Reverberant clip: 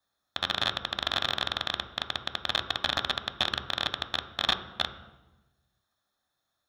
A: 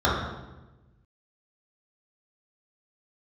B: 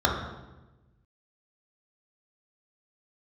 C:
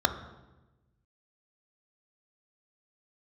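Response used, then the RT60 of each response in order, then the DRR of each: C; 1.1, 1.1, 1.1 seconds; −7.0, −1.5, 7.5 decibels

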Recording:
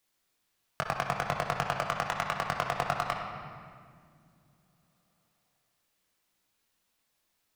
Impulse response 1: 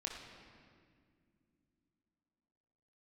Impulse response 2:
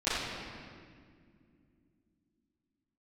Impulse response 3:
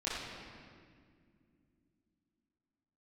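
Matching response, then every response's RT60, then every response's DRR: 1; non-exponential decay, 2.2 s, non-exponential decay; −1.0, −18.0, −10.5 decibels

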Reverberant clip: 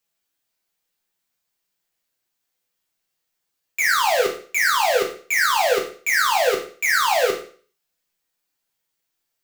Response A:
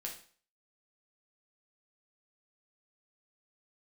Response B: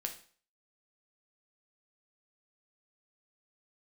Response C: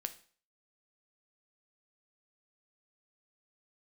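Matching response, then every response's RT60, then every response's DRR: A; 0.45, 0.45, 0.45 seconds; −1.0, 3.5, 8.5 decibels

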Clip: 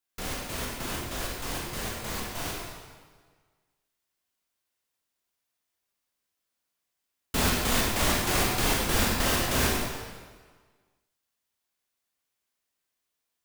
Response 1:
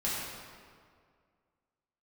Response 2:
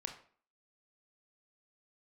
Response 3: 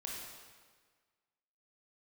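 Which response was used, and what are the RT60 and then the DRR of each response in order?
3; 2.1, 0.45, 1.6 seconds; −8.5, 4.0, −3.5 decibels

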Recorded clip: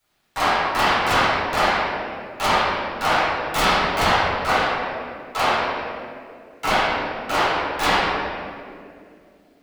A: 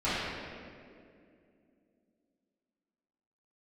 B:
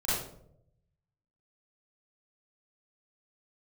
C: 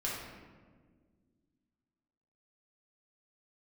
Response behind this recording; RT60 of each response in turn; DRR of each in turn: A; 2.4, 0.75, 1.6 seconds; −14.0, −11.5, −6.5 decibels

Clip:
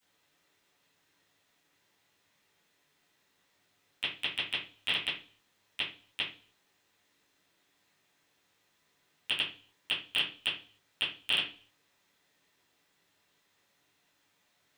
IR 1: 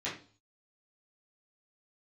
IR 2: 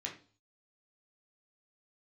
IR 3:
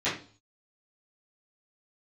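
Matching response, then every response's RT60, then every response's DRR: 3; 0.40, 0.40, 0.40 seconds; −9.5, −1.5, −14.0 decibels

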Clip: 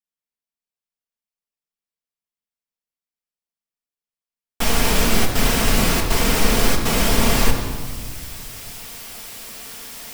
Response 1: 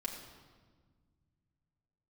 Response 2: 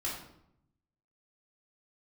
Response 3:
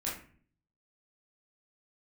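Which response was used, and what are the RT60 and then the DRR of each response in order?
1; 1.5, 0.75, 0.45 seconds; −1.0, −6.0, −7.0 decibels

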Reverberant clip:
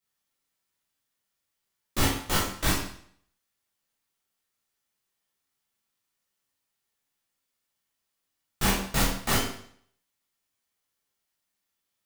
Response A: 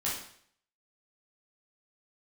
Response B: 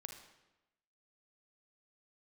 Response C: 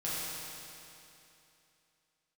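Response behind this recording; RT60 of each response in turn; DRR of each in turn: A; 0.60, 1.0, 2.9 seconds; −7.5, 4.5, −9.5 decibels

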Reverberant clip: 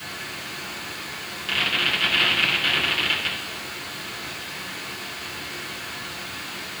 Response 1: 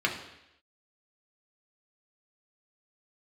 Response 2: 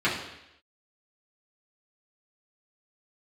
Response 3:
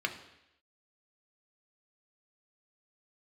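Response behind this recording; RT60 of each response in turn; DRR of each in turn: 2; 0.85, 0.85, 0.85 seconds; −0.5, −9.5, 4.0 decibels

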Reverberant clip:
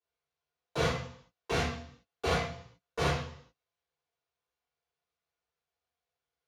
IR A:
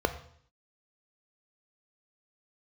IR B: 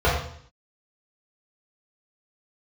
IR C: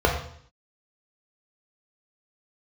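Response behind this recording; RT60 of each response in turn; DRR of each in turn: B; 0.60, 0.60, 0.60 seconds; 9.0, −8.5, 0.0 decibels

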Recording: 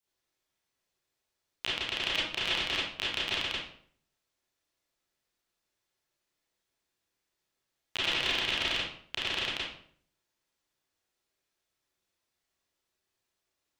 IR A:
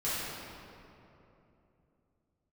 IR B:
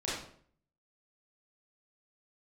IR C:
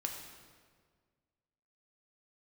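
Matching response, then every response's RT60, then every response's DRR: B; 3.0, 0.55, 1.7 seconds; −12.5, −8.5, 1.5 decibels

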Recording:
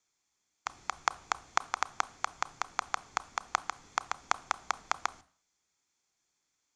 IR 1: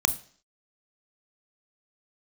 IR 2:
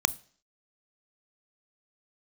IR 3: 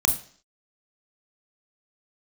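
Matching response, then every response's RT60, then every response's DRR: 2; 0.50, 0.50, 0.50 seconds; 10.5, 18.0, 5.0 decibels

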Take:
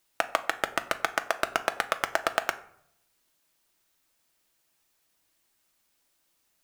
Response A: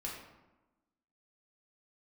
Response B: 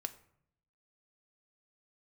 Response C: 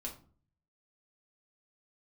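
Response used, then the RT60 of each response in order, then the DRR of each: B; 1.1, 0.65, 0.45 seconds; −4.0, 8.0, −1.5 decibels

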